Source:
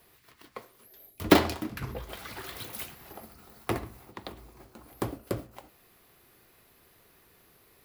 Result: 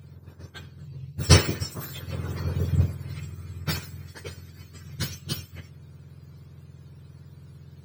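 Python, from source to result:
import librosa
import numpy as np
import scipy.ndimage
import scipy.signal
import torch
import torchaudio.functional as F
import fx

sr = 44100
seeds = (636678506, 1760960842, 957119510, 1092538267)

y = fx.octave_mirror(x, sr, pivot_hz=1300.0)
y = fx.peak_eq(y, sr, hz=760.0, db=-10.0, octaves=0.57)
y = F.gain(torch.from_numpy(y), 5.0).numpy()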